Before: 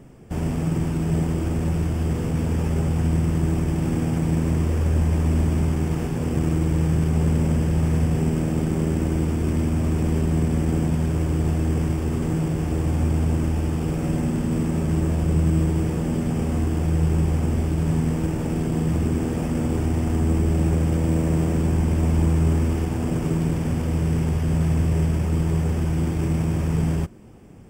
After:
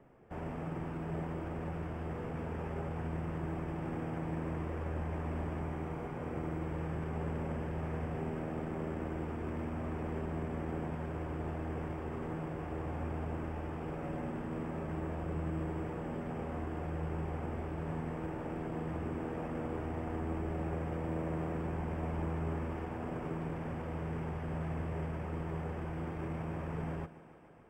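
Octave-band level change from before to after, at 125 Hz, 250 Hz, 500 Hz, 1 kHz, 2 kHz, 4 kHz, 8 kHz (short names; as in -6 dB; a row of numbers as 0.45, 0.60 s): -18.0 dB, -16.0 dB, -10.5 dB, -7.0 dB, -9.5 dB, -18.0 dB, under -25 dB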